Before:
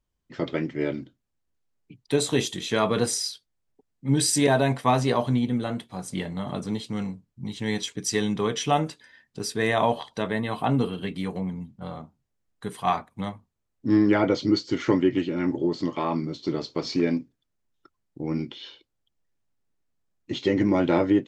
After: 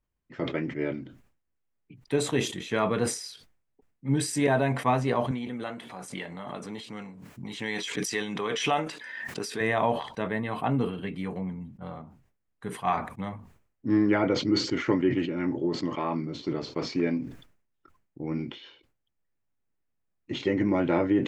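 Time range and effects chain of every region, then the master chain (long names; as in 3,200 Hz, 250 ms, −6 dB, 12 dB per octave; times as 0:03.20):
0:05.31–0:09.61: high-pass filter 510 Hz 6 dB per octave + dynamic equaliser 3,800 Hz, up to +4 dB, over −42 dBFS, Q 0.86 + background raised ahead of every attack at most 30 dB per second
whole clip: high shelf with overshoot 3,000 Hz −6 dB, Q 1.5; level that may fall only so fast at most 100 dB per second; level −3.5 dB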